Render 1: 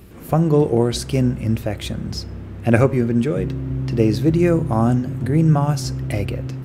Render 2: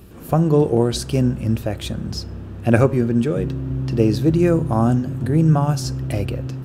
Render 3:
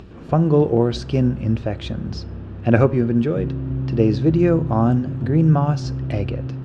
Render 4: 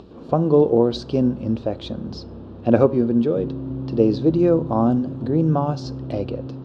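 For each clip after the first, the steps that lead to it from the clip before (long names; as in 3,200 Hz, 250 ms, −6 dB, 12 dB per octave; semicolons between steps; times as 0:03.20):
parametric band 2,100 Hz −8.5 dB 0.21 octaves
Bessel low-pass filter 3,700 Hz, order 4; upward compression, threshold −36 dBFS
octave-band graphic EQ 250/500/1,000/2,000/4,000 Hz +8/+9/+8/−7/+11 dB; level −9 dB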